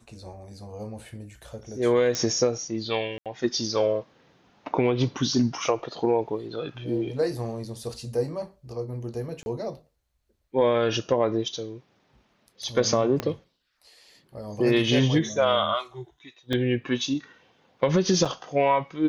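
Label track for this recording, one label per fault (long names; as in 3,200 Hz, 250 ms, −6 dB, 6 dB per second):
2.150000	2.150000	click −13 dBFS
3.180000	3.260000	drop-out 77 ms
9.430000	9.460000	drop-out 31 ms
13.200000	13.200000	click −13 dBFS
16.530000	16.530000	drop-out 2.1 ms
18.250000	18.260000	drop-out 5.3 ms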